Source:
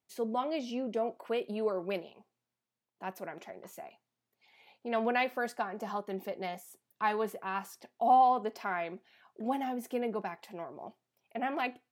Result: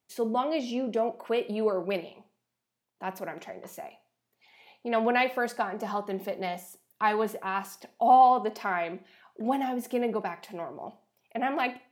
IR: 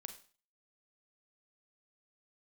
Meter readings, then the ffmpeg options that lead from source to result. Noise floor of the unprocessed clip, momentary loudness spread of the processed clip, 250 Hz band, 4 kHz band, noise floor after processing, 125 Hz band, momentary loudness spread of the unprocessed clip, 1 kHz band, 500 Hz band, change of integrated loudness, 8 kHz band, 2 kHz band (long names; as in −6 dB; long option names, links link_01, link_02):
below −85 dBFS, 17 LU, +5.0 dB, +5.0 dB, −83 dBFS, can't be measured, 18 LU, +5.0 dB, +5.0 dB, +5.0 dB, +5.0 dB, +5.0 dB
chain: -filter_complex "[0:a]asplit=2[link_01][link_02];[1:a]atrim=start_sample=2205[link_03];[link_02][link_03]afir=irnorm=-1:irlink=0,volume=3dB[link_04];[link_01][link_04]amix=inputs=2:normalize=0"